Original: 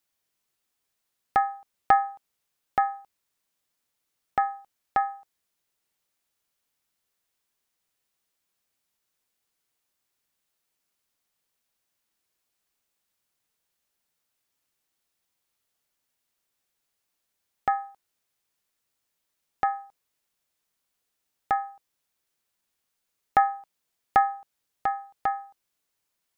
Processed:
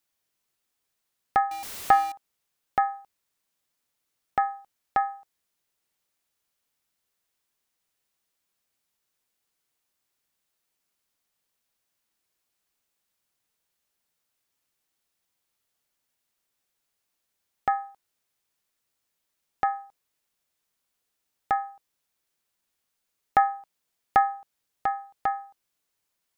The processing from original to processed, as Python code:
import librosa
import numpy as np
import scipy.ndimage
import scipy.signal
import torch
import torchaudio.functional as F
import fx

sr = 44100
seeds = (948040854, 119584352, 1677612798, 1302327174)

y = fx.zero_step(x, sr, step_db=-32.0, at=(1.51, 2.12))